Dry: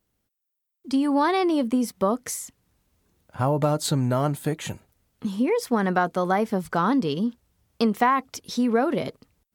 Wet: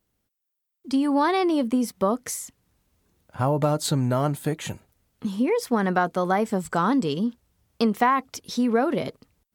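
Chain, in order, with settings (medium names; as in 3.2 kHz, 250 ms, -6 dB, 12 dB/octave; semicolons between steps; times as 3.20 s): 6.45–7.17 s: peaking EQ 7.8 kHz +14.5 dB 0.22 oct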